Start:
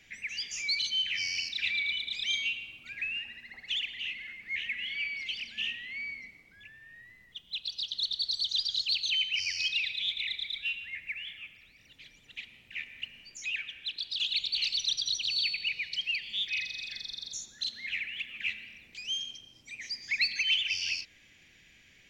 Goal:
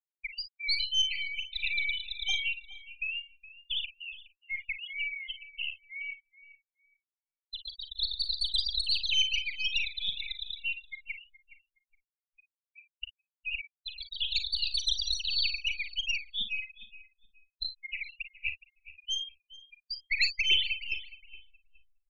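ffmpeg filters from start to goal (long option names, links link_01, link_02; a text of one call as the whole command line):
ffmpeg -i in.wav -filter_complex "[0:a]aeval=exprs='0.158*(cos(1*acos(clip(val(0)/0.158,-1,1)))-cos(1*PI/2))+0.0562*(cos(2*acos(clip(val(0)/0.158,-1,1)))-cos(2*PI/2))+0.0501*(cos(4*acos(clip(val(0)/0.158,-1,1)))-cos(4*PI/2))+0.00224*(cos(5*acos(clip(val(0)/0.158,-1,1)))-cos(5*PI/2))+0.00447*(cos(7*acos(clip(val(0)/0.158,-1,1)))-cos(7*PI/2))':channel_layout=same,afftfilt=real='re*gte(hypot(re,im),0.0891)':imag='im*gte(hypot(re,im),0.0891)':win_size=1024:overlap=0.75,asplit=2[link_01][link_02];[link_02]adelay=417,lowpass=frequency=2200:poles=1,volume=-13.5dB,asplit=2[link_03][link_04];[link_04]adelay=417,lowpass=frequency=2200:poles=1,volume=0.43,asplit=2[link_05][link_06];[link_06]adelay=417,lowpass=frequency=2200:poles=1,volume=0.43,asplit=2[link_07][link_08];[link_08]adelay=417,lowpass=frequency=2200:poles=1,volume=0.43[link_09];[link_03][link_05][link_07][link_09]amix=inputs=4:normalize=0[link_10];[link_01][link_10]amix=inputs=2:normalize=0,afftdn=noise_reduction=34:noise_floor=-50,asplit=2[link_11][link_12];[link_12]aecho=0:1:40|54:0.251|0.211[link_13];[link_11][link_13]amix=inputs=2:normalize=0,volume=1dB" out.wav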